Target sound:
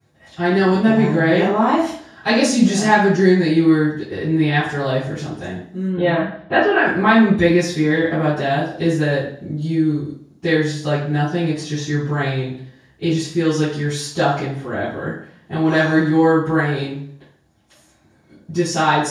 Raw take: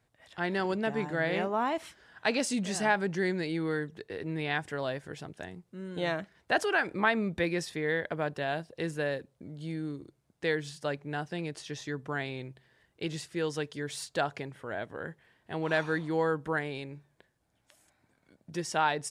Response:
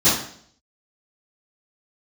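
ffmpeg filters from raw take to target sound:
-filter_complex "[0:a]asettb=1/sr,asplit=3[s0][s1][s2];[s0]atrim=end=5.864[s3];[s1]atrim=start=5.86:end=6.84,asetpts=PTS-STARTPTS,afade=t=in:d=0.004:c=qsin,afade=t=out:st=0.976:d=0.004:c=qsin,lowpass=f=3200:w=0.5412,lowpass=f=3200:w=1.3066[s4];[s2]atrim=start=6.836[s5];[s3][s4]acrossfade=d=0.004:c1=hsin:c2=qsin[s6];[s6][s5]acrossfade=d=0.004:c1=qsin:c2=hsin[s7];[1:a]atrim=start_sample=2205[s8];[s7][s8]afir=irnorm=-1:irlink=0,volume=0.422"

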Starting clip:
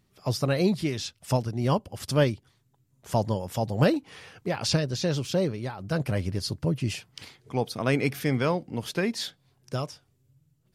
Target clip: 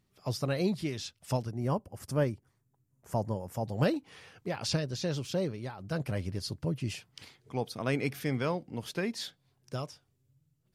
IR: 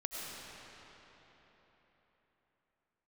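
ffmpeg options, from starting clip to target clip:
-filter_complex "[0:a]asettb=1/sr,asplit=3[s0][s1][s2];[s0]atrim=end=1.504[s3];[s1]atrim=start=1.5:end=3.66,asetpts=PTS-STARTPTS,afade=t=in:d=0.004:c=qsin,afade=t=out:st=2.156:d=0.004:c=qsin,equalizer=f=3600:w=1.3:g=-13.5[s4];[s2]atrim=start=3.656[s5];[s3][s4]acrossfade=d=0.004:c1=hsin:c2=qsin[s6];[s6][s5]acrossfade=d=0.004:c1=qsin:c2=hsin,volume=0.501"

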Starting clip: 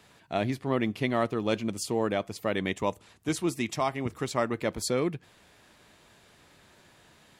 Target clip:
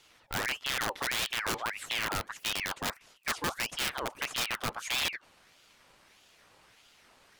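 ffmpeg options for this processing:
-filter_complex "[0:a]acrossover=split=5500[s0][s1];[s1]acompressor=threshold=0.00282:ratio=4:attack=1:release=60[s2];[s0][s2]amix=inputs=2:normalize=0,aeval=exprs='(mod(12.6*val(0)+1,2)-1)/12.6':c=same,aeval=exprs='val(0)*sin(2*PI*1900*n/s+1900*0.65/1.6*sin(2*PI*1.6*n/s))':c=same"

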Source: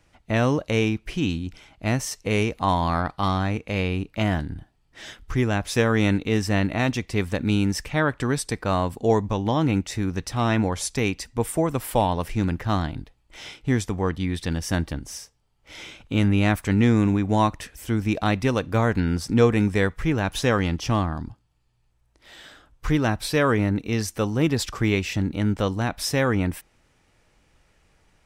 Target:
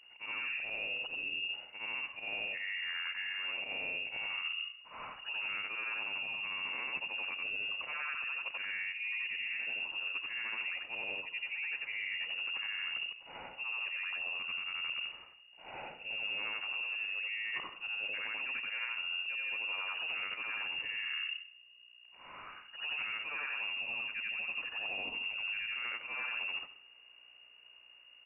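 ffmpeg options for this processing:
-filter_complex "[0:a]afftfilt=real='re':imag='-im':win_size=8192:overlap=0.75,bandreject=f=291.6:t=h:w=4,bandreject=f=583.2:t=h:w=4,bandreject=f=874.8:t=h:w=4,dynaudnorm=f=170:g=31:m=1.58,alimiter=limit=0.15:level=0:latency=1:release=47,areverse,acompressor=threshold=0.0178:ratio=12,areverse,aeval=exprs='val(0)+0.00126*(sin(2*PI*60*n/s)+sin(2*PI*2*60*n/s)/2+sin(2*PI*3*60*n/s)/3+sin(2*PI*4*60*n/s)/4+sin(2*PI*5*60*n/s)/5)':c=same,asplit=2[s0][s1];[s1]aecho=0:1:162|324:0.0794|0.0183[s2];[s0][s2]amix=inputs=2:normalize=0,lowpass=f=2500:t=q:w=0.5098,lowpass=f=2500:t=q:w=0.6013,lowpass=f=2500:t=q:w=0.9,lowpass=f=2500:t=q:w=2.563,afreqshift=-2900,asplit=2[s3][s4];[s4]adelay=128.3,volume=0.112,highshelf=f=4000:g=-2.89[s5];[s3][s5]amix=inputs=2:normalize=0"

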